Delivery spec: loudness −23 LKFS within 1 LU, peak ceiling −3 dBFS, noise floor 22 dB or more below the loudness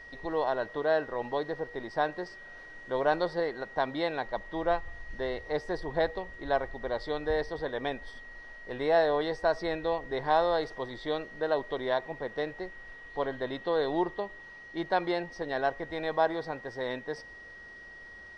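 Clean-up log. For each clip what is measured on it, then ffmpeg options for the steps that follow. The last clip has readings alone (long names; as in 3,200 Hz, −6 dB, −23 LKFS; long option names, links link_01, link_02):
interfering tone 1,900 Hz; level of the tone −46 dBFS; integrated loudness −32.0 LKFS; sample peak −12.5 dBFS; target loudness −23.0 LKFS
→ -af "bandreject=frequency=1900:width=30"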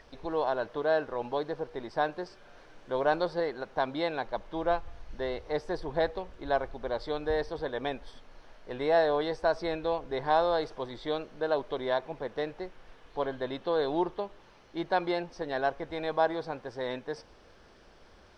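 interfering tone none found; integrated loudness −31.5 LKFS; sample peak −13.0 dBFS; target loudness −23.0 LKFS
→ -af "volume=8.5dB"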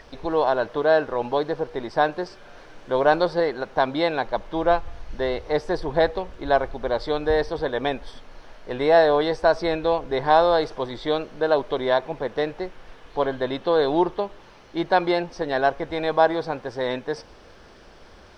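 integrated loudness −23.0 LKFS; sample peak −4.5 dBFS; background noise floor −48 dBFS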